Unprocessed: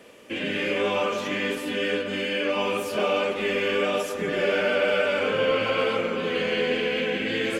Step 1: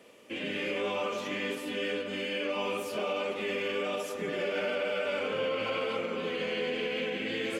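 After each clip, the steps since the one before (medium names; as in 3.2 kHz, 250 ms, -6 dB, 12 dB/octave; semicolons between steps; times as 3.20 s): high-pass 110 Hz 6 dB/octave; peaking EQ 1.6 kHz -5 dB 0.24 oct; peak limiter -17 dBFS, peak gain reduction 4.5 dB; trim -6 dB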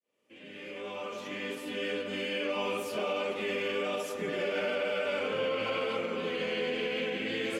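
fade-in on the opening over 2.14 s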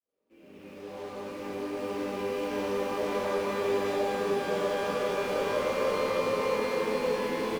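median filter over 25 samples; delay 614 ms -3 dB; pitch-shifted reverb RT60 3.8 s, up +12 st, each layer -8 dB, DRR -7.5 dB; trim -6 dB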